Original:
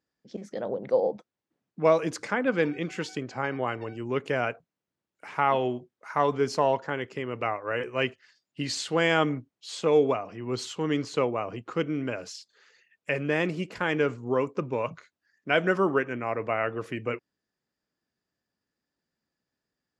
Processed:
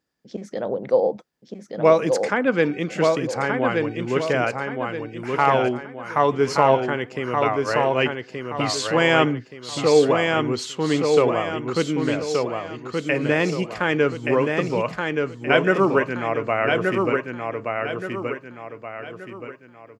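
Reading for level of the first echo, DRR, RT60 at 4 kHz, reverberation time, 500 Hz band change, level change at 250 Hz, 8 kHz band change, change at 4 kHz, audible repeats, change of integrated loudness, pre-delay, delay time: -4.0 dB, no reverb, no reverb, no reverb, +7.0 dB, +7.0 dB, +7.0 dB, +7.0 dB, 4, +6.5 dB, no reverb, 1175 ms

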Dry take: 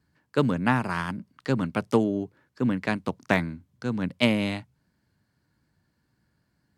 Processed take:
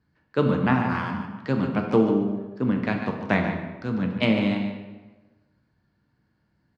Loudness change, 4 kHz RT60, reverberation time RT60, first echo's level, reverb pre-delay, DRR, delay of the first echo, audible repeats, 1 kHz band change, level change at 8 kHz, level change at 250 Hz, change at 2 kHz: +2.5 dB, 0.85 s, 1.2 s, -9.5 dB, 7 ms, 2.0 dB, 146 ms, 1, +1.5 dB, under -10 dB, +3.0 dB, +0.5 dB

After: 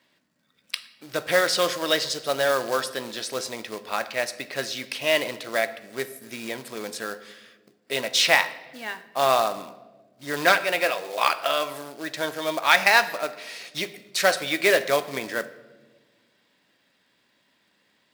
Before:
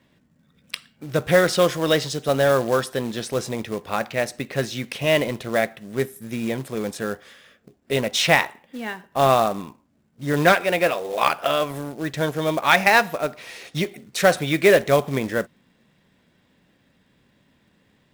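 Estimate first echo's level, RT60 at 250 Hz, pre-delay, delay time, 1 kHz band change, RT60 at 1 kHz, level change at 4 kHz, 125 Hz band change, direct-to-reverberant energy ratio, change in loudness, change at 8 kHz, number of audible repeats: no echo, 2.1 s, 3 ms, no echo, -2.5 dB, 1.1 s, +1.5 dB, -16.0 dB, 11.5 dB, -2.5 dB, +0.5 dB, no echo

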